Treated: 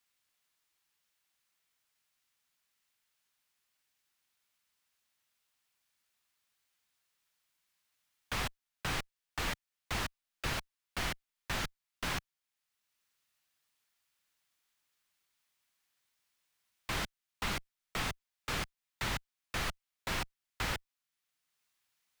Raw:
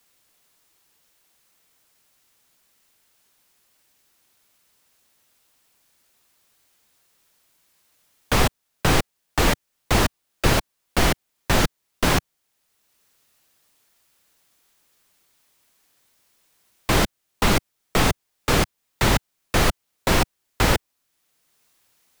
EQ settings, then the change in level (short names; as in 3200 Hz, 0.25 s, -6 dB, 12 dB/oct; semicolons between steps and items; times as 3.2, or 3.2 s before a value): passive tone stack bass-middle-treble 5-5-5; low shelf 200 Hz -5 dB; high shelf 3600 Hz -12 dB; 0.0 dB